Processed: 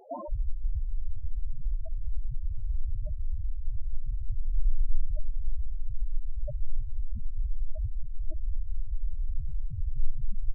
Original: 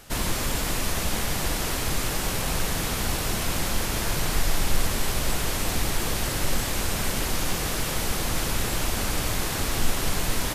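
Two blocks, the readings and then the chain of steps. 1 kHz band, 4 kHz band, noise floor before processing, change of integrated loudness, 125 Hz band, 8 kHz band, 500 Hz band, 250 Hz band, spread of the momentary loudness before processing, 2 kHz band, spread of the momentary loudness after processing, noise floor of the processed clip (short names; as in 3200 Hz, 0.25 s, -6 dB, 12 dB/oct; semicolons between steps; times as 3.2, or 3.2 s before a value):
under -20 dB, under -40 dB, -28 dBFS, -11.0 dB, -6.5 dB, under -40 dB, -17.0 dB, -23.5 dB, 1 LU, under -40 dB, 4 LU, -34 dBFS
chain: three bands offset in time mids, highs, lows 40/190 ms, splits 220/4300 Hz; dynamic EQ 600 Hz, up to +5 dB, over -54 dBFS, Q 5; in parallel at +2 dB: limiter -20.5 dBFS, peak gain reduction 11 dB; on the sum: high shelf 7800 Hz -8.5 dB; loudest bins only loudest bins 2; reverse; upward compressor, threshold -24 dBFS; reverse; short-mantissa float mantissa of 8-bit; gain -1.5 dB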